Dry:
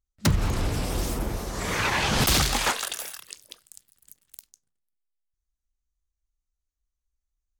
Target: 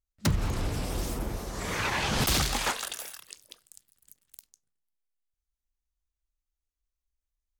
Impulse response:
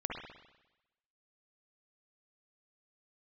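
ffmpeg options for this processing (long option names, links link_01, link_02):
-filter_complex "[0:a]asplit=2[link_01][link_02];[1:a]atrim=start_sample=2205,lowpass=1200[link_03];[link_02][link_03]afir=irnorm=-1:irlink=0,volume=-23.5dB[link_04];[link_01][link_04]amix=inputs=2:normalize=0,volume=-4.5dB"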